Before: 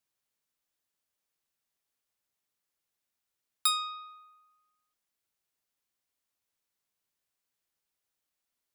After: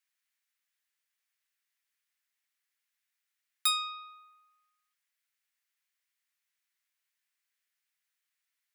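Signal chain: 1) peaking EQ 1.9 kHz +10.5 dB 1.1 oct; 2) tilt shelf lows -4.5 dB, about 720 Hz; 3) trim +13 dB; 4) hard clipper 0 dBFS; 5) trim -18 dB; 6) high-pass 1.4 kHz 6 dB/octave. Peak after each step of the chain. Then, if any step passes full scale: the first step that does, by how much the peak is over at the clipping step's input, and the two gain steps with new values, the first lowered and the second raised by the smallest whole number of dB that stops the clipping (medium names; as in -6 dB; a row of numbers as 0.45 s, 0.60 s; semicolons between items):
-9.5 dBFS, -5.5 dBFS, +7.5 dBFS, 0.0 dBFS, -18.0 dBFS, -16.0 dBFS; step 3, 7.5 dB; step 3 +5 dB, step 5 -10 dB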